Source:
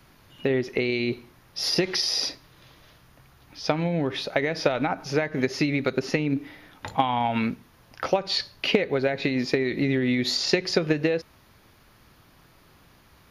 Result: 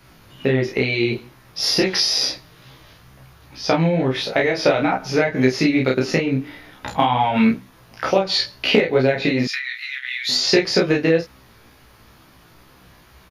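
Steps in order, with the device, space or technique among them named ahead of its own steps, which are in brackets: double-tracked vocal (doubling 31 ms -2.5 dB; chorus 2.2 Hz, delay 15 ms, depth 3 ms); 9.47–10.29 s: elliptic high-pass 1.4 kHz, stop band 70 dB; trim +7.5 dB

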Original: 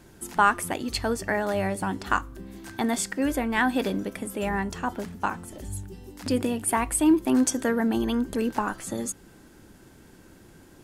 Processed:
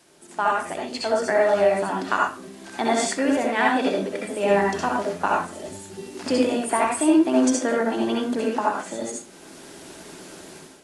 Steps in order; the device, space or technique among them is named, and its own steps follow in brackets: filmed off a television (band-pass 260–6900 Hz; peaking EQ 650 Hz +6 dB 0.37 oct; reverberation RT60 0.35 s, pre-delay 60 ms, DRR -2 dB; white noise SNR 27 dB; level rider gain up to 13.5 dB; trim -6.5 dB; AAC 48 kbps 24 kHz)

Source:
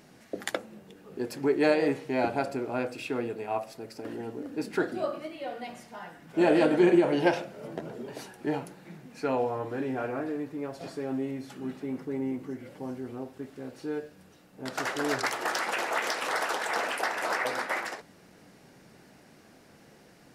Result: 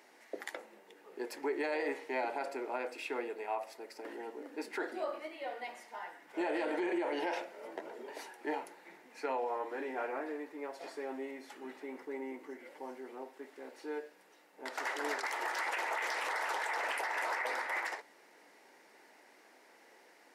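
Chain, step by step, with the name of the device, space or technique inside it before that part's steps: laptop speaker (high-pass 330 Hz 24 dB/octave; peaking EQ 910 Hz +8 dB 0.29 oct; peaking EQ 2 kHz +8 dB 0.44 oct; peak limiter -21 dBFS, peak gain reduction 11.5 dB); trim -5.5 dB

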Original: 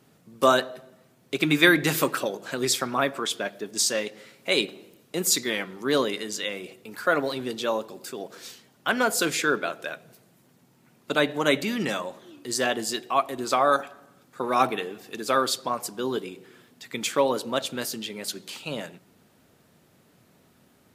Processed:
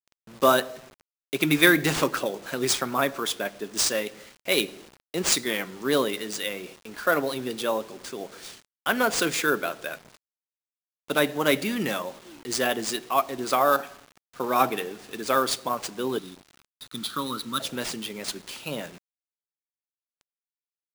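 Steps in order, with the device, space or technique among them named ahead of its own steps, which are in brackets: 16.18–17.60 s: FFT filter 160 Hz 0 dB, 280 Hz -2 dB, 720 Hz -25 dB, 1.3 kHz +7 dB, 2.2 kHz -26 dB, 3.9 kHz +8 dB, 7 kHz -22 dB; early 8-bit sampler (sample-rate reducer 14 kHz, jitter 0%; bit crusher 8-bit)

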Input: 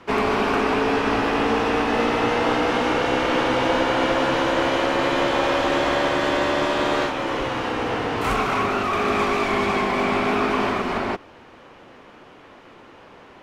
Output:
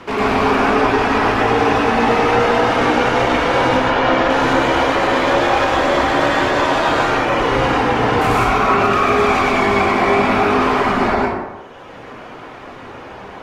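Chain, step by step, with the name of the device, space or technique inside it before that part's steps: 3.77–4.30 s: low-pass 5.6 kHz 12 dB/octave; reverb removal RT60 1.5 s; soft clipper into limiter (saturation -15 dBFS, distortion -22 dB; peak limiter -23.5 dBFS, peak gain reduction 8 dB); plate-style reverb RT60 1.1 s, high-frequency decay 0.45×, pre-delay 90 ms, DRR -5.5 dB; trim +9 dB

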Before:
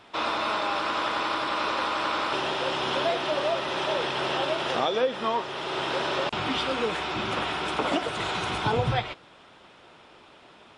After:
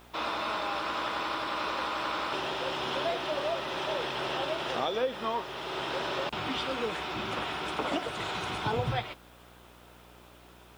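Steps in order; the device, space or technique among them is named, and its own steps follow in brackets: video cassette with head-switching buzz (mains buzz 60 Hz, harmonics 27, -52 dBFS -4 dB/octave; white noise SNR 32 dB); trim -5 dB

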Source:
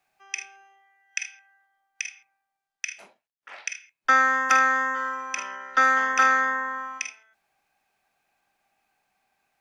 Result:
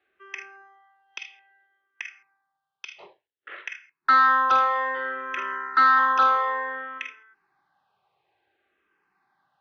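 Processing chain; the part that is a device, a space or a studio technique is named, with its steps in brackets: barber-pole phaser into a guitar amplifier (barber-pole phaser -0.58 Hz; saturation -20 dBFS, distortion -10 dB; cabinet simulation 84–3500 Hz, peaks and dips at 230 Hz -9 dB, 380 Hz +8 dB, 680 Hz -8 dB, 1.1 kHz +4 dB, 2.4 kHz -9 dB); trim +7 dB

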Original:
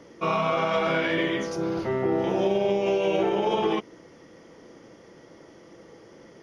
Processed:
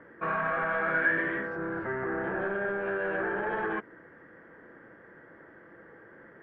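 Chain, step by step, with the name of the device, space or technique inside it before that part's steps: overdriven synthesiser ladder filter (saturation -24 dBFS, distortion -11 dB; four-pole ladder low-pass 1.7 kHz, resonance 85%); trim +7.5 dB

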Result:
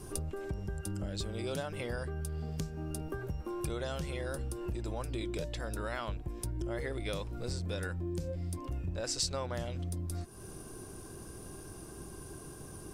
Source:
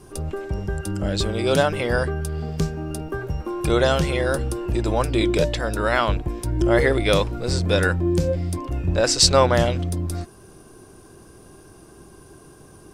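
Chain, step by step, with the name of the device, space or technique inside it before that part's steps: ASMR close-microphone chain (bass shelf 190 Hz +5 dB; compression 5:1, threshold -33 dBFS, peak gain reduction 20 dB; treble shelf 6.5 kHz +7.5 dB); trim -3 dB

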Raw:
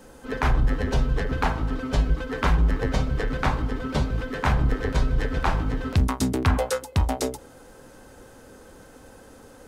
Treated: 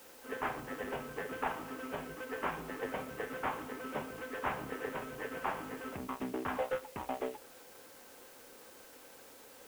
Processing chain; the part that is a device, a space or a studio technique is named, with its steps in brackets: army field radio (band-pass 350–2900 Hz; CVSD coder 16 kbps; white noise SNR 17 dB); trim -7.5 dB

